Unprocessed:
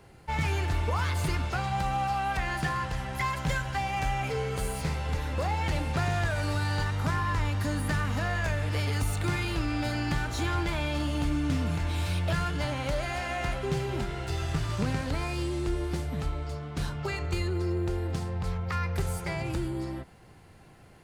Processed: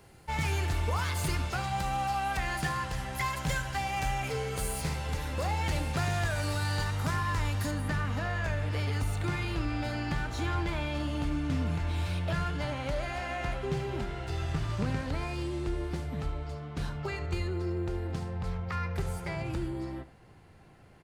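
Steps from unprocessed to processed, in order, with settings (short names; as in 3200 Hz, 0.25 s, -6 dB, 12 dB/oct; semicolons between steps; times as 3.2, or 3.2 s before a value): high shelf 5100 Hz +7.5 dB, from 7.71 s -6.5 dB; echo 73 ms -15 dB; gain -2.5 dB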